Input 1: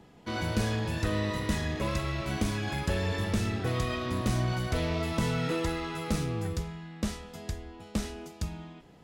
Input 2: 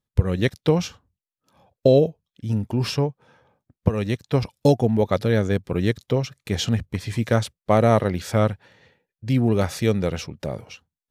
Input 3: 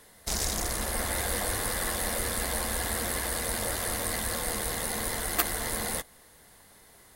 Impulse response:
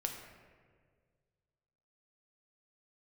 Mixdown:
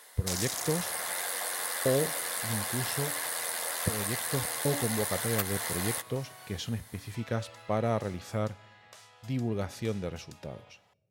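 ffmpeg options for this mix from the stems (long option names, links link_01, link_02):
-filter_complex "[0:a]highpass=frequency=640:width=0.5412,highpass=frequency=640:width=1.3066,acompressor=threshold=-48dB:ratio=3,adelay=1900,volume=-4dB,asplit=3[link_01][link_02][link_03];[link_01]atrim=end=6.57,asetpts=PTS-STARTPTS,afade=type=out:start_time=6.566:duration=0.004:curve=hsin[link_04];[link_02]atrim=start=6.57:end=7.14,asetpts=PTS-STARTPTS,volume=0[link_05];[link_03]atrim=start=7.14,asetpts=PTS-STARTPTS,afade=type=in:duration=0.004:curve=hsin[link_06];[link_04][link_05][link_06]concat=n=3:v=0:a=1[link_07];[1:a]bandreject=frequency=286.4:width_type=h:width=4,bandreject=frequency=572.8:width_type=h:width=4,bandreject=frequency=859.2:width_type=h:width=4,bandreject=frequency=1145.6:width_type=h:width=4,bandreject=frequency=1432:width_type=h:width=4,bandreject=frequency=1718.4:width_type=h:width=4,bandreject=frequency=2004.8:width_type=h:width=4,bandreject=frequency=2291.2:width_type=h:width=4,bandreject=frequency=2577.6:width_type=h:width=4,bandreject=frequency=2864:width_type=h:width=4,bandreject=frequency=3150.4:width_type=h:width=4,bandreject=frequency=3436.8:width_type=h:width=4,bandreject=frequency=3723.2:width_type=h:width=4,bandreject=frequency=4009.6:width_type=h:width=4,bandreject=frequency=4296:width_type=h:width=4,bandreject=frequency=4582.4:width_type=h:width=4,bandreject=frequency=4868.8:width_type=h:width=4,bandreject=frequency=5155.2:width_type=h:width=4,bandreject=frequency=5441.6:width_type=h:width=4,bandreject=frequency=5728:width_type=h:width=4,bandreject=frequency=6014.4:width_type=h:width=4,bandreject=frequency=6300.8:width_type=h:width=4,bandreject=frequency=6587.2:width_type=h:width=4,bandreject=frequency=6873.6:width_type=h:width=4,bandreject=frequency=7160:width_type=h:width=4,bandreject=frequency=7446.4:width_type=h:width=4,bandreject=frequency=7732.8:width_type=h:width=4,bandreject=frequency=8019.2:width_type=h:width=4,bandreject=frequency=8305.6:width_type=h:width=4,bandreject=frequency=8592:width_type=h:width=4,volume=-12.5dB,asplit=2[link_08][link_09];[link_09]volume=-22.5dB[link_10];[2:a]acompressor=threshold=-33dB:ratio=3,highpass=660,volume=3dB[link_11];[3:a]atrim=start_sample=2205[link_12];[link_10][link_12]afir=irnorm=-1:irlink=0[link_13];[link_07][link_08][link_11][link_13]amix=inputs=4:normalize=0"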